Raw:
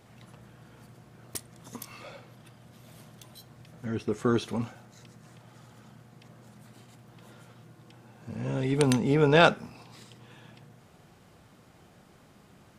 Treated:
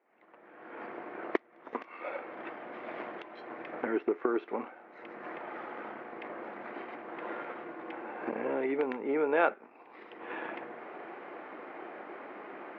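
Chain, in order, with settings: G.711 law mismatch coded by A; recorder AGC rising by 35 dB/s; elliptic band-pass 320–2200 Hz, stop band 60 dB; gain -5.5 dB

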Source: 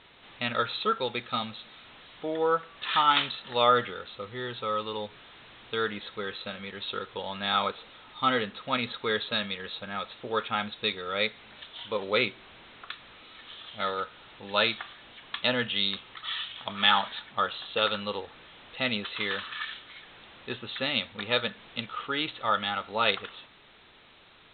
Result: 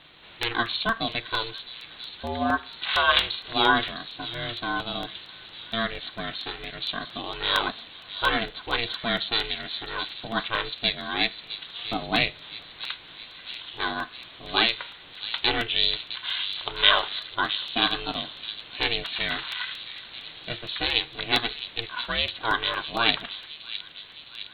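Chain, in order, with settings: bell 74 Hz +6 dB 1.4 oct; ring modulator 230 Hz; high shelf 3600 Hz +10.5 dB; on a send: thin delay 0.661 s, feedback 63%, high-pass 3600 Hz, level -7.5 dB; on the sum: crackling interface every 0.23 s, samples 64, repeat, from 0.43; gain +3 dB

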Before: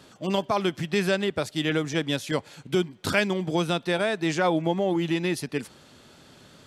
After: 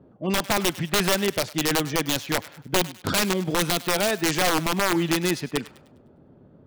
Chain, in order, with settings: low-pass opened by the level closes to 470 Hz, open at -20.5 dBFS; wrapped overs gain 17 dB; on a send: thinning echo 0.101 s, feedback 39%, high-pass 1000 Hz, level -16 dB; on the sum: gain +2.5 dB

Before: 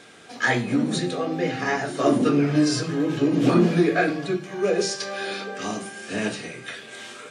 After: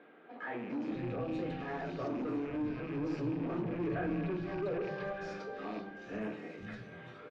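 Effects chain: rattling part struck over -34 dBFS, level -21 dBFS; 1.2–1.68 resonant high shelf 2800 Hz +9.5 dB, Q 1.5; limiter -16.5 dBFS, peak gain reduction 8 dB; soft clip -25 dBFS, distortion -12 dB; tape spacing loss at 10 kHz 40 dB; three bands offset in time mids, highs, lows 0.4/0.48 s, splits 190/3400 Hz; reverb RT60 0.90 s, pre-delay 3 ms, DRR 13 dB; 3.81–5.13 fast leveller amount 50%; gain -5 dB

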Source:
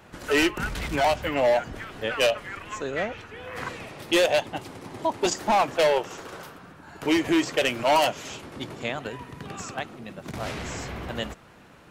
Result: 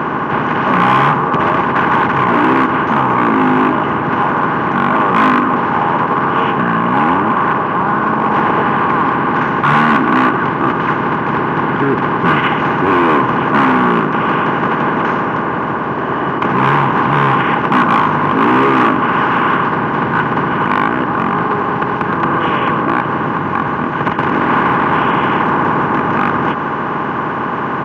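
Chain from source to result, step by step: per-bin compression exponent 0.4; in parallel at 0 dB: limiter -15 dBFS, peak gain reduction 10.5 dB; on the sum: notch 3100 Hz, Q 5.1; speed mistake 78 rpm record played at 33 rpm; band shelf 1200 Hz +11.5 dB 1.1 oct; hard clip -7.5 dBFS, distortion -13 dB; HPF 140 Hz 12 dB/oct; resonant high shelf 3300 Hz -11.5 dB, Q 1.5; on a send: echo 0.631 s -24 dB

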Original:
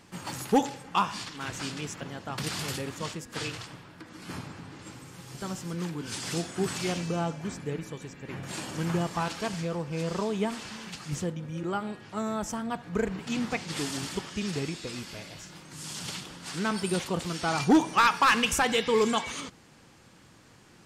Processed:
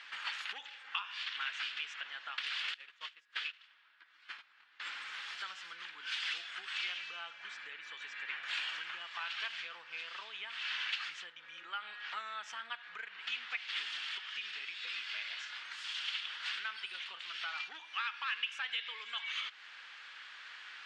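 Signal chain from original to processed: dynamic EQ 2800 Hz, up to +5 dB, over -48 dBFS, Q 1.6; compressor 6:1, threshold -42 dBFS, peak gain reduction 23 dB; 2.74–4.8 gate -42 dBFS, range -22 dB; Chebyshev band-pass 1500–3500 Hz, order 2; vocal rider within 3 dB 2 s; gain +10.5 dB

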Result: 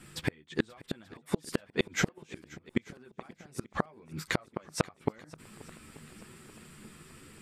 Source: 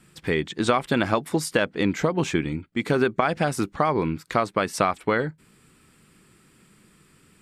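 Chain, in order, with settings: in parallel at +2.5 dB: limiter -15.5 dBFS, peak gain reduction 10 dB; on the sum: chorus voices 4, 1 Hz, delay 11 ms, depth 3 ms; flipped gate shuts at -13 dBFS, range -35 dB; swung echo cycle 0.885 s, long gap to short 1.5:1, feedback 44%, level -21 dB

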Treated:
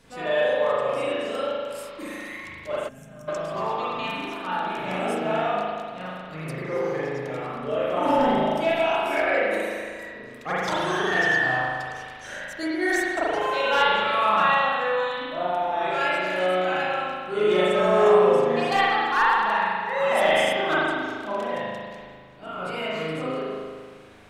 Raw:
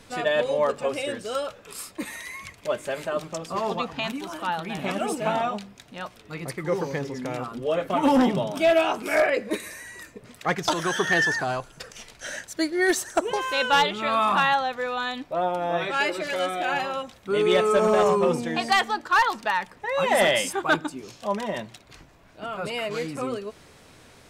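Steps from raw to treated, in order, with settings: dynamic EQ 220 Hz, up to -4 dB, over -35 dBFS, Q 1.2; spring tank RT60 1.8 s, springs 38 ms, chirp 65 ms, DRR -9 dB; spectral gain 2.88–3.28, 260–5300 Hz -20 dB; gain -8 dB

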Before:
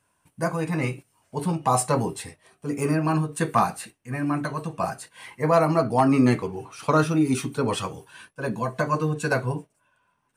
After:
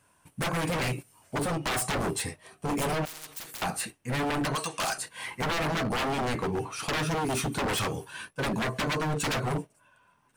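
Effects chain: 0.58–1.39 high shelf 9800 Hz +6.5 dB; compressor 6:1, threshold -23 dBFS, peak gain reduction 9.5 dB; 4.55–4.98 weighting filter ITU-R 468; wavefolder -28.5 dBFS; 3.05–3.62 spectral compressor 10:1; gain +5 dB

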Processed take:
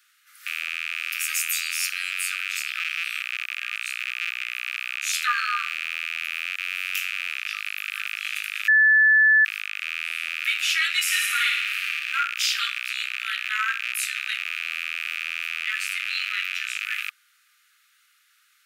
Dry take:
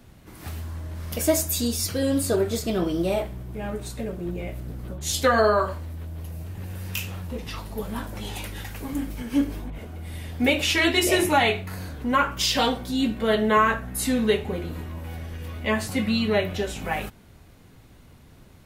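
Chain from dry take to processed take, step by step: rattling part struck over -37 dBFS, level -14 dBFS; Chebyshev high-pass 1200 Hz, order 10; 8.68–9.45 bleep 1740 Hz -13 dBFS; 11.01–12.19 flutter echo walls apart 9.8 m, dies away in 0.85 s

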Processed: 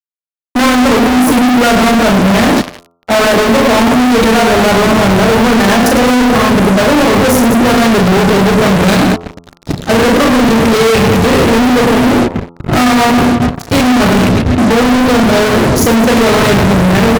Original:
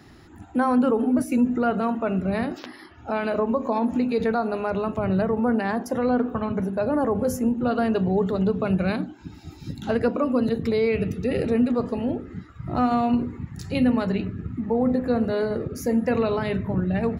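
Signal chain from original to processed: reverse bouncing-ball echo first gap 40 ms, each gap 1.6×, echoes 5; gate -27 dBFS, range -19 dB; in parallel at 0 dB: compressor, threshold -30 dBFS, peak gain reduction 16.5 dB; on the sum: fuzz box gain 39 dB, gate -44 dBFS; de-hum 85.52 Hz, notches 16; gain +6 dB

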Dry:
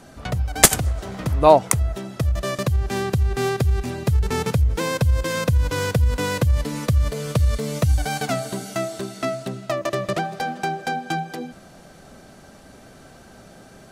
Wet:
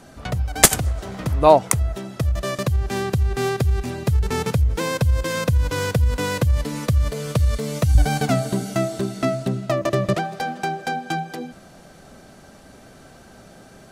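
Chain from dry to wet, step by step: 7.95–10.15 low shelf 370 Hz +9.5 dB

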